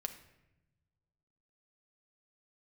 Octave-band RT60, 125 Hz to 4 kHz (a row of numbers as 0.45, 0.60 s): 2.0, 1.6, 1.1, 0.85, 0.90, 0.65 s